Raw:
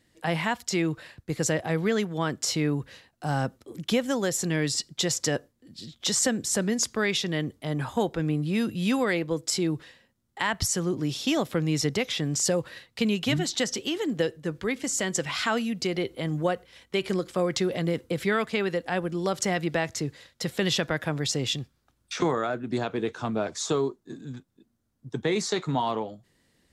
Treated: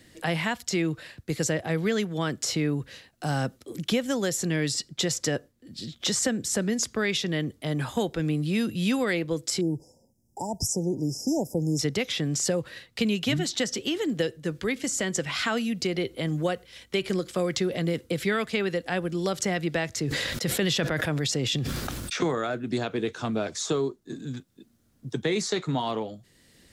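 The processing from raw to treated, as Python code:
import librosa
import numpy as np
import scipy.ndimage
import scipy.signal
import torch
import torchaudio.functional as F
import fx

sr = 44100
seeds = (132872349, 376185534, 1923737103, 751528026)

y = fx.brickwall_bandstop(x, sr, low_hz=960.0, high_hz=4900.0, at=(9.61, 11.79))
y = fx.sustainer(y, sr, db_per_s=21.0, at=(19.93, 22.17))
y = fx.peak_eq(y, sr, hz=940.0, db=-4.5, octaves=0.77)
y = fx.band_squash(y, sr, depth_pct=40)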